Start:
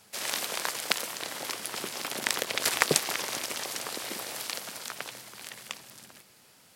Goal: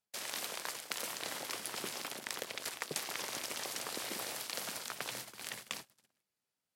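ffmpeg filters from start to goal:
-af "agate=range=0.02:threshold=0.00562:ratio=16:detection=peak,areverse,acompressor=threshold=0.0112:ratio=8,areverse,volume=1.33"

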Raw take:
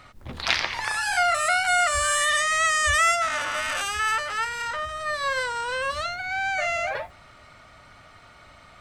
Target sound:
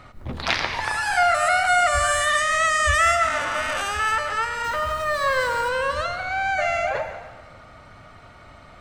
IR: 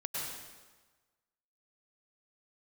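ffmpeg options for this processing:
-filter_complex "[0:a]asettb=1/sr,asplit=3[s0][s1][s2];[s0]atrim=end=4.644[s3];[s1]atrim=start=4.64:end=5.69,asetpts=PTS-STARTPTS,afade=t=in:d=0.004:c=qsin,afade=t=out:st=1.046:d=0.004:c=qsin,aeval=exprs='val(0)+0.5*0.0211*sgn(val(0))':c=same[s4];[s2]atrim=start=5.686[s5];[s3][s4]acrossfade=d=0.004:c1=hsin:c2=qsin[s6];[s6][s5]acrossfade=d=0.004:c1=qsin:c2=hsin,tiltshelf=f=1400:g=4.5,asplit=2[s7][s8];[1:a]atrim=start_sample=2205[s9];[s8][s9]afir=irnorm=-1:irlink=0,volume=0.355[s10];[s7][s10]amix=inputs=2:normalize=0"

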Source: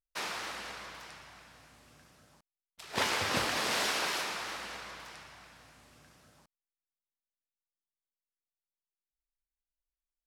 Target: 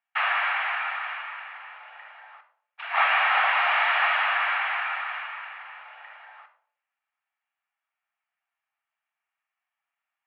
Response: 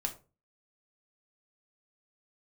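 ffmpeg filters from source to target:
-filter_complex "[0:a]asplit=2[s0][s1];[1:a]atrim=start_sample=2205,asetrate=24696,aresample=44100,highshelf=f=6100:g=11.5[s2];[s1][s2]afir=irnorm=-1:irlink=0,volume=0.794[s3];[s0][s3]amix=inputs=2:normalize=0,asplit=2[s4][s5];[s5]highpass=f=720:p=1,volume=8.91,asoftclip=type=tanh:threshold=0.316[s6];[s4][s6]amix=inputs=2:normalize=0,lowpass=f=2100:p=1,volume=0.501,highpass=f=360:t=q:w=0.5412,highpass=f=360:t=q:w=1.307,lowpass=f=2500:t=q:w=0.5176,lowpass=f=2500:t=q:w=0.7071,lowpass=f=2500:t=q:w=1.932,afreqshift=270"

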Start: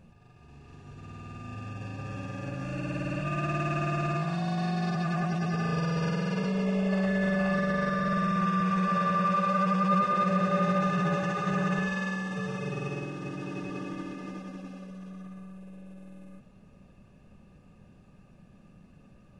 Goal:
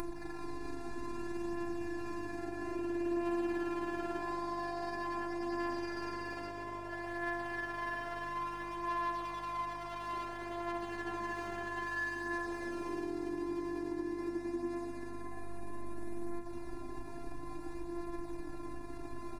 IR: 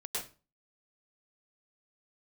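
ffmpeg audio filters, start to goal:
-filter_complex "[0:a]asplit=2[s0][s1];[s1]acompressor=mode=upward:threshold=0.0355:ratio=2.5,volume=0.891[s2];[s0][s2]amix=inputs=2:normalize=0,aeval=exprs='sgn(val(0))*max(abs(val(0))-0.00398,0)':c=same,asuperstop=centerf=3000:order=4:qfactor=2.9,equalizer=f=330:w=3.5:g=9,asoftclip=type=tanh:threshold=0.106,aecho=1:1:3.6:0.43,acompressor=threshold=0.0141:ratio=6,afftfilt=real='hypot(re,im)*cos(PI*b)':imag='0':win_size=512:overlap=0.75,aeval=exprs='val(0)+0.00141*(sin(2*PI*50*n/s)+sin(2*PI*2*50*n/s)/2+sin(2*PI*3*50*n/s)/3+sin(2*PI*4*50*n/s)/4+sin(2*PI*5*50*n/s)/5)':c=same,superequalizer=9b=3.16:16b=1.58,flanger=delay=5.7:depth=8:regen=38:speed=0.11:shape=triangular,volume=2.66"

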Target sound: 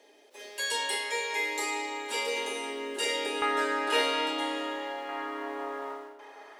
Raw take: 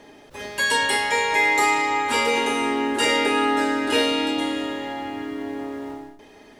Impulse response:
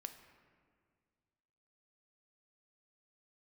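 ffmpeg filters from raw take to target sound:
-filter_complex "[0:a]highpass=f=400:w=0.5412,highpass=f=400:w=1.3066,asetnsamples=n=441:p=0,asendcmd='3.42 equalizer g 4.5;5.09 equalizer g 12.5',equalizer=f=1200:t=o:w=1.5:g=-9.5[s0];[1:a]atrim=start_sample=2205,asetrate=52920,aresample=44100[s1];[s0][s1]afir=irnorm=-1:irlink=0"

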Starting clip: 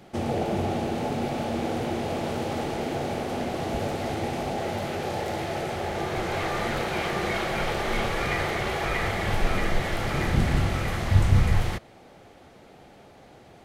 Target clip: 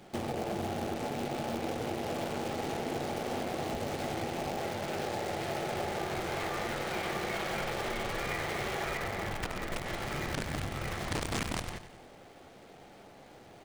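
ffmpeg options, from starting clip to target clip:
-filter_complex "[0:a]aeval=exprs='(mod(5.01*val(0)+1,2)-1)/5.01':c=same,asettb=1/sr,asplit=3[s0][s1][s2];[s0]atrim=end=8.974[s3];[s1]atrim=start=8.97:end=9.86,asetpts=PTS-STARTPTS,afade=t=in:d=0.004:c=qsin,afade=t=out:st=0.886:d=0.004:c=qsin,highshelf=f=2700:g=-6.5[s4];[s2]atrim=start=9.856[s5];[s3][s4]acrossfade=d=0.004:c1=hsin:c2=qsin[s6];[s6][s5]acrossfade=d=0.004:c1=qsin:c2=hsin,acompressor=threshold=0.0316:ratio=8,asplit=2[s7][s8];[s8]aecho=0:1:97|194|291|388|485|582:0.299|0.161|0.0871|0.047|0.0254|0.0137[s9];[s7][s9]amix=inputs=2:normalize=0,aresample=22050,aresample=44100,asplit=2[s10][s11];[s11]acrusher=bits=6:dc=4:mix=0:aa=0.000001,volume=0.596[s12];[s10][s12]amix=inputs=2:normalize=0,lowshelf=f=110:g=-5.5,volume=0.562"

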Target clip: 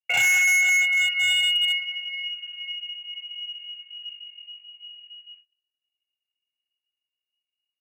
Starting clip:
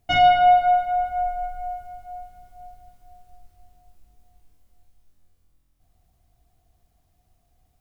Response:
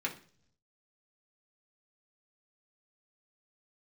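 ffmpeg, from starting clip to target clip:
-filter_complex "[0:a]lowshelf=f=140:g=9.5,acrossover=split=130|830|1300[s0][s1][s2][s3];[s3]acrusher=samples=26:mix=1:aa=0.000001:lfo=1:lforange=15.6:lforate=0.7[s4];[s0][s1][s2][s4]amix=inputs=4:normalize=0,lowpass=f=2500:t=q:w=0.5098,lowpass=f=2500:t=q:w=0.6013,lowpass=f=2500:t=q:w=0.9,lowpass=f=2500:t=q:w=2.563,afreqshift=-2900,agate=range=0.02:threshold=0.00562:ratio=16:detection=peak,aecho=1:1:26|60:0.447|0.531,volume=7.94,asoftclip=hard,volume=0.126,equalizer=f=125:t=o:w=0.33:g=11,equalizer=f=500:t=o:w=0.33:g=9,equalizer=f=800:t=o:w=0.33:g=4,aeval=exprs='0.168*(cos(1*acos(clip(val(0)/0.168,-1,1)))-cos(1*PI/2))+0.00668*(cos(2*acos(clip(val(0)/0.168,-1,1)))-cos(2*PI/2))+0.00106*(cos(3*acos(clip(val(0)/0.168,-1,1)))-cos(3*PI/2))+0.00335*(cos(4*acos(clip(val(0)/0.168,-1,1)))-cos(4*PI/2))':c=same"

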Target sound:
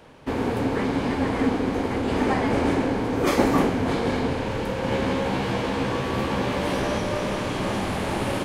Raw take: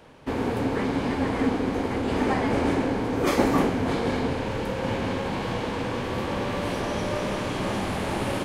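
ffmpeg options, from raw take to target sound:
-filter_complex "[0:a]asettb=1/sr,asplit=3[s0][s1][s2];[s0]atrim=end=4.904[s3];[s1]atrim=start=4.9:end=6.98,asetpts=PTS-STARTPTS,afade=t=in:d=0.004:c=qsin,afade=t=out:st=2.076:d=0.004:c=qsin,asplit=2[s4][s5];[s5]adelay=15,volume=0.708[s6];[s4][s6]amix=inputs=2:normalize=0,atrim=end_sample=91728[s7];[s2]atrim=start=6.976[s8];[s3][s7]acrossfade=d=0.004:c1=hsin:c2=qsin[s9];[s9][s8]acrossfade=d=0.004:c1=qsin:c2=hsin,volume=1.19"

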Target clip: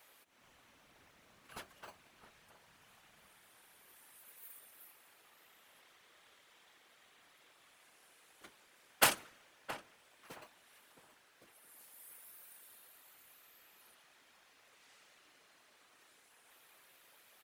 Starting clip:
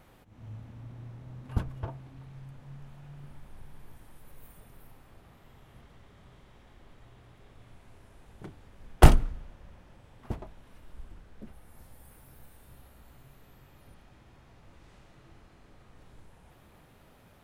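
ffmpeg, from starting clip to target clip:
-filter_complex "[0:a]highpass=500,highshelf=f=5600:g=7,acrossover=split=1100[s0][s1];[s0]acrusher=samples=25:mix=1:aa=0.000001[s2];[s1]acontrast=74[s3];[s2][s3]amix=inputs=2:normalize=0,afftfilt=real='hypot(re,im)*cos(2*PI*random(0))':imag='hypot(re,im)*sin(2*PI*random(1))':win_size=512:overlap=0.75,asplit=2[s4][s5];[s5]adelay=669,lowpass=f=1700:p=1,volume=0.251,asplit=2[s6][s7];[s7]adelay=669,lowpass=f=1700:p=1,volume=0.24,asplit=2[s8][s9];[s9]adelay=669,lowpass=f=1700:p=1,volume=0.24[s10];[s4][s6][s8][s10]amix=inputs=4:normalize=0,volume=0.841"

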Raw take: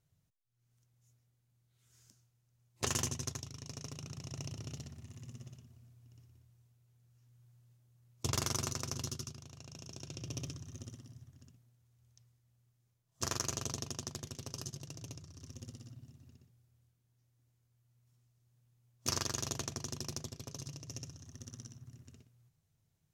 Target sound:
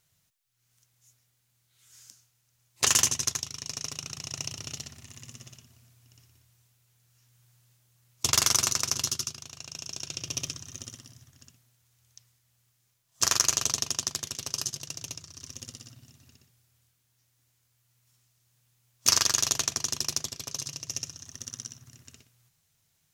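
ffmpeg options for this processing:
-af "tiltshelf=f=780:g=-8,volume=2.11"

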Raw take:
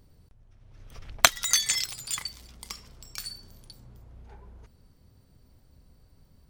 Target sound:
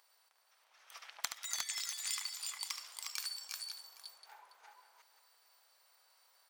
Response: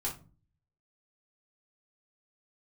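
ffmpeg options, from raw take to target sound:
-af "highpass=f=830:w=0.5412,highpass=f=830:w=1.3066,acompressor=threshold=0.0126:ratio=16,aecho=1:1:73|339|357|533|814:0.376|0.266|0.668|0.237|0.1,volume=1.19"

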